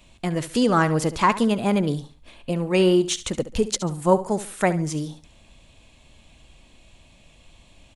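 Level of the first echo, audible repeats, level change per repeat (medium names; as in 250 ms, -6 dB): -14.5 dB, 2, -10.5 dB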